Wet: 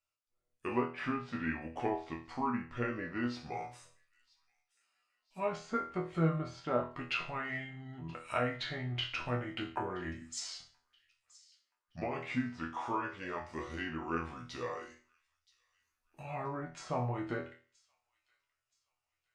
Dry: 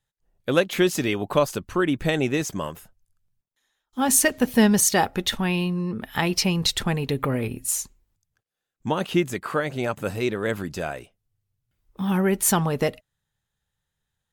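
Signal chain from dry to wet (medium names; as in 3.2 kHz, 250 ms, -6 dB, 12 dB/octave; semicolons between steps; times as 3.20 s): low-pass that closes with the level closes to 1.4 kHz, closed at -16.5 dBFS; bass shelf 480 Hz -11.5 dB; hum notches 60/120/180 Hz; chord resonator A2 fifth, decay 0.29 s; feedback echo behind a high-pass 722 ms, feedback 35%, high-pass 4.8 kHz, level -19 dB; speed mistake 45 rpm record played at 33 rpm; trim +6 dB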